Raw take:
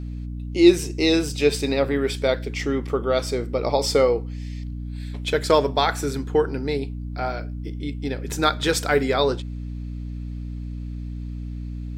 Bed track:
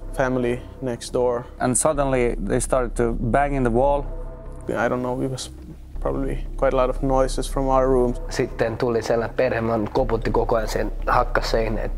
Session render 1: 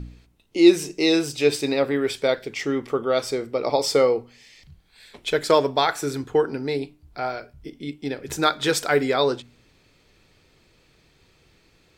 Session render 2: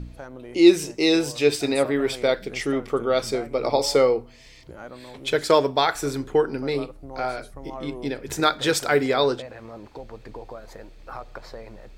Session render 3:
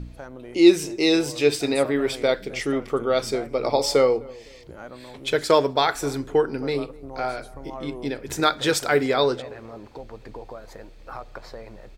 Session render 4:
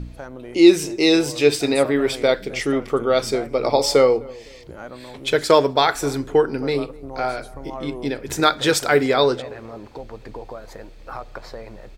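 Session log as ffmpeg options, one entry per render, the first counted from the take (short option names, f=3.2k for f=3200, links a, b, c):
-af "bandreject=f=60:t=h:w=4,bandreject=f=120:t=h:w=4,bandreject=f=180:t=h:w=4,bandreject=f=240:t=h:w=4,bandreject=f=300:t=h:w=4"
-filter_complex "[1:a]volume=-18.5dB[a];[0:a][a]amix=inputs=2:normalize=0"
-filter_complex "[0:a]asplit=2[a][b];[b]adelay=255,lowpass=f=1k:p=1,volume=-21dB,asplit=2[c][d];[d]adelay=255,lowpass=f=1k:p=1,volume=0.37,asplit=2[e][f];[f]adelay=255,lowpass=f=1k:p=1,volume=0.37[g];[a][c][e][g]amix=inputs=4:normalize=0"
-af "volume=3.5dB,alimiter=limit=-1dB:level=0:latency=1"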